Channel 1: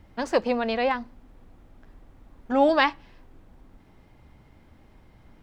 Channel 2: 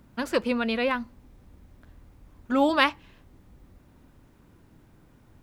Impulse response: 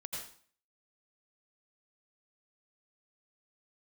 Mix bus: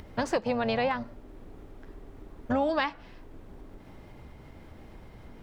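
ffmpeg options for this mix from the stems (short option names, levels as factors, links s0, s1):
-filter_complex "[0:a]acompressor=mode=upward:threshold=0.00631:ratio=2.5,volume=1.33,asplit=2[s0][s1];[1:a]lowpass=1000,aeval=exprs='val(0)*sin(2*PI*350*n/s)':c=same,volume=0.944,asplit=2[s2][s3];[s3]volume=0.112[s4];[s1]apad=whole_len=239084[s5];[s2][s5]sidechaincompress=threshold=0.0631:ratio=8:attack=16:release=390[s6];[2:a]atrim=start_sample=2205[s7];[s4][s7]afir=irnorm=-1:irlink=0[s8];[s0][s6][s8]amix=inputs=3:normalize=0,acompressor=threshold=0.0631:ratio=6"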